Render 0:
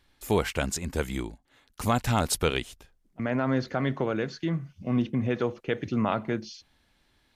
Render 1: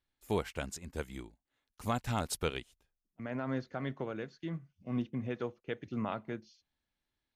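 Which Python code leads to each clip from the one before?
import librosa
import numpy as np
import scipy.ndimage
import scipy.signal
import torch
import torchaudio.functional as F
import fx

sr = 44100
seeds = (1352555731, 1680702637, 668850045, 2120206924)

y = fx.upward_expand(x, sr, threshold_db=-47.0, expansion=1.5)
y = y * librosa.db_to_amplitude(-7.5)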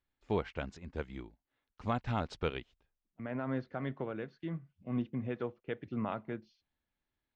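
y = scipy.ndimage.gaussian_filter1d(x, 2.1, mode='constant')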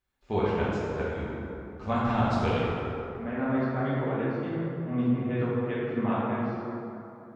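y = fx.rev_plate(x, sr, seeds[0], rt60_s=3.0, hf_ratio=0.45, predelay_ms=0, drr_db=-9.0)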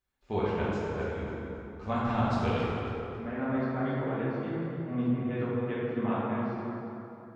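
y = fx.echo_feedback(x, sr, ms=272, feedback_pct=34, wet_db=-11.0)
y = y * librosa.db_to_amplitude(-3.0)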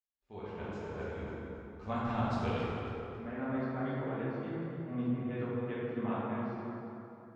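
y = fx.fade_in_head(x, sr, length_s=1.27)
y = y * librosa.db_to_amplitude(-5.0)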